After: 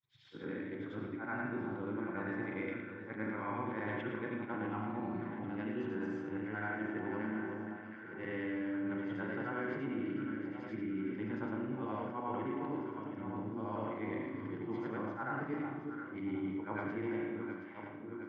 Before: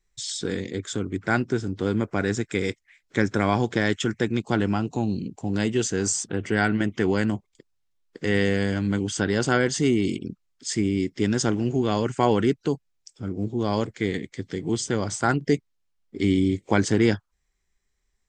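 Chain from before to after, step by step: short-time reversal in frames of 0.229 s; speaker cabinet 170–2100 Hz, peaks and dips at 210 Hz -8 dB, 420 Hz -9 dB, 640 Hz -3 dB, 980 Hz +4 dB, 1800 Hz -5 dB; resonator 220 Hz, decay 1 s, mix 70%; echo with dull and thin repeats by turns 0.36 s, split 1200 Hz, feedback 75%, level -10.5 dB; spring tank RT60 1 s, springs 37 ms, chirp 70 ms, DRR 2 dB; reverse; compressor, threshold -40 dBFS, peak gain reduction 10.5 dB; reverse; notch 700 Hz, Q 12; gain +5.5 dB

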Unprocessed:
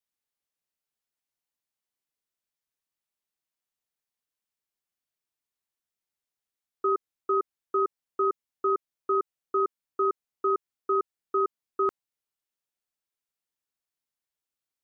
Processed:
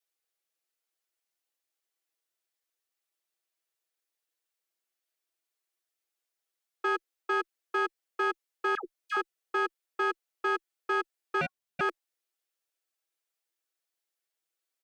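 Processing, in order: one diode to ground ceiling -35 dBFS; elliptic high-pass 340 Hz; bell 960 Hz -5 dB 0.5 oct; comb 6.1 ms, depth 59%; 8.75–9.17 dispersion lows, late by 97 ms, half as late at 890 Hz; 11.41–11.81 ring modulator 1100 Hz; gain +2.5 dB

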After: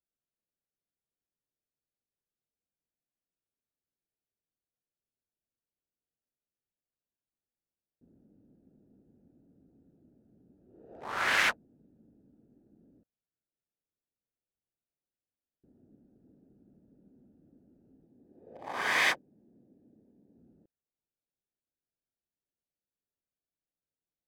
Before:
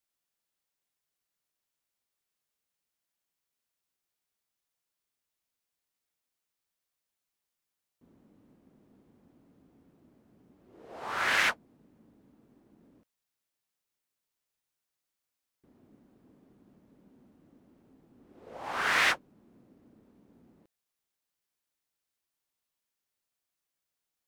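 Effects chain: Wiener smoothing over 41 samples; 18.06–20.38 notch comb 1400 Hz

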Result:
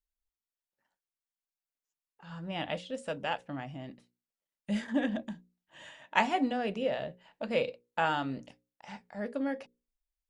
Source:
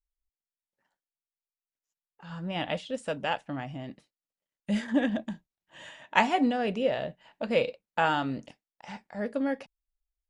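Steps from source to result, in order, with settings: notches 60/120/180/240/300/360/420/480/540 Hz; gain -3.5 dB

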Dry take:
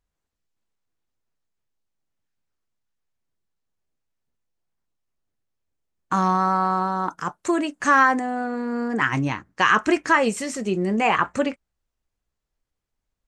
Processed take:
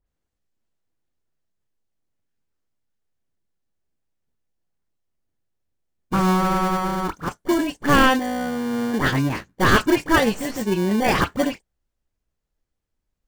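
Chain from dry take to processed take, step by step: tracing distortion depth 0.13 ms; dispersion highs, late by 68 ms, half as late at 2200 Hz; in parallel at -3.5 dB: sample-rate reducer 1300 Hz, jitter 0%; on the sum: gain -1.5 dB

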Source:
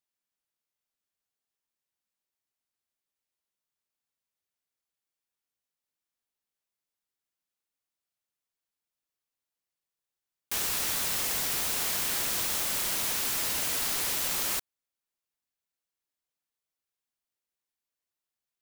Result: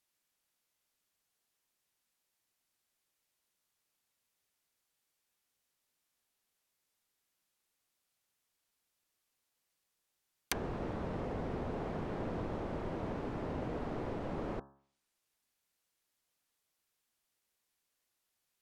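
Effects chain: treble ducked by the level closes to 520 Hz, closed at -32 dBFS; de-hum 68.76 Hz, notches 25; gain +7.5 dB

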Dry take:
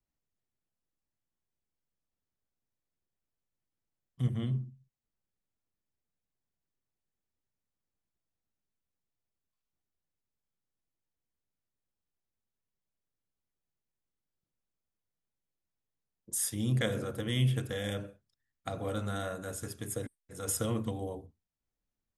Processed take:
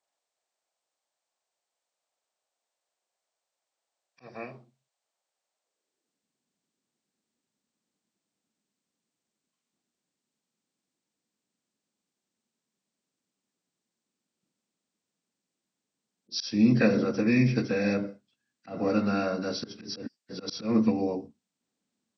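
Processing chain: nonlinear frequency compression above 1400 Hz 1.5:1; auto swell 0.169 s; high-pass sweep 650 Hz -> 220 Hz, 5.57–6.27; gain +7 dB

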